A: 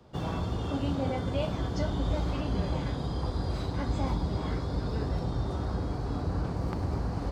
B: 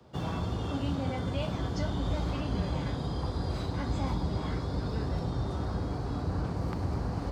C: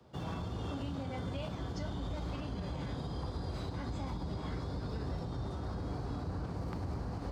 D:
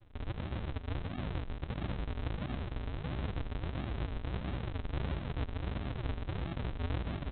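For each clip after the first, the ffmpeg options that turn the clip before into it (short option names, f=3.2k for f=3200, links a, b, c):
-filter_complex "[0:a]acrossover=split=280|810[a][b][c];[b]alimiter=level_in=11dB:limit=-24dB:level=0:latency=1,volume=-11dB[d];[a][d][c]amix=inputs=3:normalize=0,highpass=53"
-af "alimiter=level_in=2dB:limit=-24dB:level=0:latency=1:release=71,volume=-2dB,volume=-4dB"
-filter_complex "[0:a]asplit=2[a][b];[b]adelay=15,volume=-11dB[c];[a][c]amix=inputs=2:normalize=0,aresample=8000,acrusher=samples=32:mix=1:aa=0.000001:lfo=1:lforange=32:lforate=1.5,aresample=44100,volume=1dB"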